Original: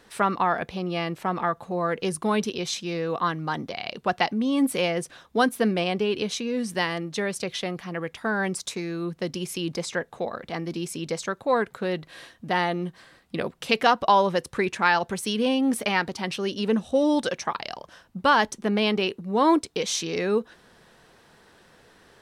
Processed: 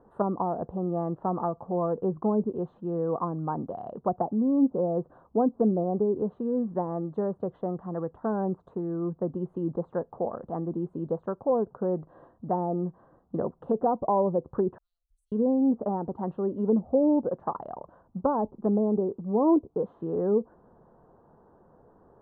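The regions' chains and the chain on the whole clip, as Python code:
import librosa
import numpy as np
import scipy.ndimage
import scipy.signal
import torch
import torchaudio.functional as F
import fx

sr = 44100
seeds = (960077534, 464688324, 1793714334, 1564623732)

y = fx.chain(x, sr, fx.cheby2_bandstop(low_hz=130.0, high_hz=1800.0, order=4, stop_db=60),
    fx.tone_stack(knobs='10-0-10'), at=(14.78, 15.32))
y = fx.env_lowpass_down(y, sr, base_hz=650.0, full_db=-20.0)
y = scipy.signal.sosfilt(scipy.signal.cheby2(4, 40, 2100.0, 'lowpass', fs=sr, output='sos'), y)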